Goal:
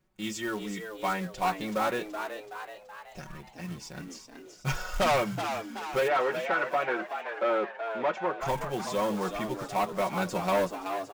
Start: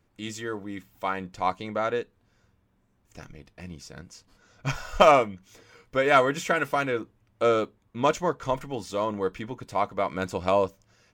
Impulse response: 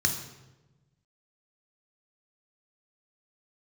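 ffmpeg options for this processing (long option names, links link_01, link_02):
-filter_complex "[0:a]agate=range=-6dB:threshold=-54dB:ratio=16:detection=peak,aecho=1:1:5.4:0.91,asoftclip=type=tanh:threshold=-20dB,acrusher=bits=4:mode=log:mix=0:aa=0.000001,asplit=3[link_01][link_02][link_03];[link_01]afade=type=out:start_time=6.07:duration=0.02[link_04];[link_02]highpass=330,lowpass=2100,afade=type=in:start_time=6.07:duration=0.02,afade=type=out:start_time=8.4:duration=0.02[link_05];[link_03]afade=type=in:start_time=8.4:duration=0.02[link_06];[link_04][link_05][link_06]amix=inputs=3:normalize=0,asplit=7[link_07][link_08][link_09][link_10][link_11][link_12][link_13];[link_08]adelay=377,afreqshift=100,volume=-8dB[link_14];[link_09]adelay=754,afreqshift=200,volume=-13.4dB[link_15];[link_10]adelay=1131,afreqshift=300,volume=-18.7dB[link_16];[link_11]adelay=1508,afreqshift=400,volume=-24.1dB[link_17];[link_12]adelay=1885,afreqshift=500,volume=-29.4dB[link_18];[link_13]adelay=2262,afreqshift=600,volume=-34.8dB[link_19];[link_07][link_14][link_15][link_16][link_17][link_18][link_19]amix=inputs=7:normalize=0,volume=-1.5dB"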